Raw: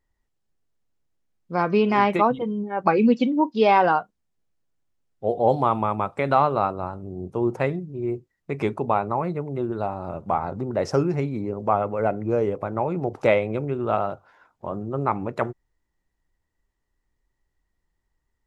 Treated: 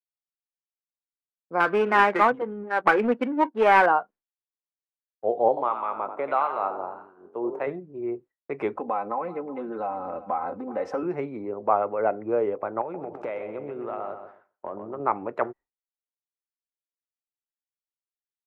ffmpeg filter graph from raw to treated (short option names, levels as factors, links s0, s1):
-filter_complex "[0:a]asettb=1/sr,asplit=3[s0][s1][s2];[s0]atrim=end=1.604[s3];[s1]atrim=start=1.6:end=3.86,asetpts=PTS-STARTPTS,afade=t=in:d=0.004:c=qsin,afade=t=out:st=2.256:d=0.004:c=qsin,equalizer=f=1600:t=o:w=0.68:g=14,aeval=exprs='clip(val(0),-1,0.141)':c=same,adynamicsmooth=sensitivity=3.5:basefreq=540[s4];[s2]atrim=start=3.856[s5];[s3][s4]acrossfade=d=0.004:c1=hsin:c2=qsin[s6];[s6][s5]acrossfade=d=0.004:c1=qsin:c2=hsin,asettb=1/sr,asplit=3[s7][s8][s9];[s7]atrim=end=5.484[s10];[s8]atrim=start=5.48:end=7.67,asetpts=PTS-STARTPTS,afade=t=in:d=0.004:c=qsin,afade=t=out:st=2.186:d=0.004:c=qsin,highpass=f=320:p=1,asplit=7[s11][s12][s13][s14][s15][s16][s17];[s12]adelay=88,afreqshift=44,volume=0.355[s18];[s13]adelay=176,afreqshift=88,volume=0.174[s19];[s14]adelay=264,afreqshift=132,volume=0.0851[s20];[s15]adelay=352,afreqshift=176,volume=0.0417[s21];[s16]adelay=440,afreqshift=220,volume=0.0204[s22];[s17]adelay=528,afreqshift=264,volume=0.01[s23];[s11][s18][s19][s20][s21][s22][s23]amix=inputs=7:normalize=0,atrim=end_sample=96579,acrossover=split=1000[s24][s25];[s24]aeval=exprs='val(0)*(1-0.7/2+0.7/2*cos(2*PI*1.5*n/s))':c=same[s26];[s25]aeval=exprs='val(0)*(1-0.7/2-0.7/2*cos(2*PI*1.5*n/s))':c=same[s27];[s26][s27]amix=inputs=2:normalize=0[s28];[s9]atrim=start=7.666[s29];[s10][s28]acrossfade=d=0.004:c1=hsin:c2=qsin[s30];[s30][s29]acrossfade=d=0.004:c1=qsin:c2=hsin,asettb=1/sr,asplit=3[s31][s32][s33];[s31]atrim=end=8.754[s34];[s32]atrim=start=8.75:end=11.03,asetpts=PTS-STARTPTS,afade=t=in:d=0.004:c=qsin,afade=t=out:st=2.276:d=0.004:c=qsin,aecho=1:1:3.9:0.91,atrim=end_sample=100548,acompressor=threshold=0.0562:ratio=2.5:attack=3.2:release=140:knee=1:detection=peak,aecho=1:1:378:0.133,atrim=end_sample=100548[s35];[s33]atrim=start=11.026[s36];[s34][s35]acrossfade=d=0.004:c1=hsin:c2=qsin[s37];[s37][s36]acrossfade=d=0.004:c1=qsin:c2=hsin,asettb=1/sr,asplit=3[s38][s39][s40];[s38]atrim=end=12.814[s41];[s39]atrim=start=12.81:end=15,asetpts=PTS-STARTPTS,afade=t=in:d=0.004:c=qsin,afade=t=out:st=2.186:d=0.004:c=qsin,acompressor=threshold=0.0501:ratio=10:attack=3.2:release=140:knee=1:detection=peak,asplit=2[s42][s43];[s43]adelay=129,lowpass=f=4900:p=1,volume=0.398,asplit=2[s44][s45];[s45]adelay=129,lowpass=f=4900:p=1,volume=0.43,asplit=2[s46][s47];[s47]adelay=129,lowpass=f=4900:p=1,volume=0.43,asplit=2[s48][s49];[s49]adelay=129,lowpass=f=4900:p=1,volume=0.43,asplit=2[s50][s51];[s51]adelay=129,lowpass=f=4900:p=1,volume=0.43[s52];[s42][s44][s46][s48][s50][s52]amix=inputs=6:normalize=0,atrim=end_sample=96579[s53];[s40]atrim=start=14.996[s54];[s41][s53]acrossfade=d=0.004:c1=hsin:c2=qsin[s55];[s55][s54]acrossfade=d=0.004:c1=qsin:c2=hsin,agate=range=0.0224:threshold=0.01:ratio=3:detection=peak,acrossover=split=290 2500:gain=0.126 1 0.1[s56][s57][s58];[s56][s57][s58]amix=inputs=3:normalize=0"